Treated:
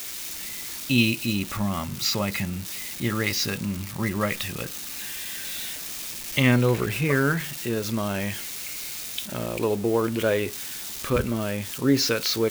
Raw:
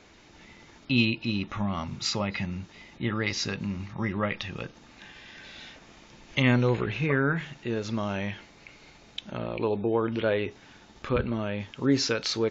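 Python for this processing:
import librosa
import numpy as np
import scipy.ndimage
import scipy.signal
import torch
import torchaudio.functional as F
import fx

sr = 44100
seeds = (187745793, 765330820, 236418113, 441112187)

y = x + 0.5 * 10.0 ** (-27.5 / 20.0) * np.diff(np.sign(x), prepend=np.sign(x[:1]))
y = fx.peak_eq(y, sr, hz=860.0, db=-3.5, octaves=0.23)
y = F.gain(torch.from_numpy(y), 3.0).numpy()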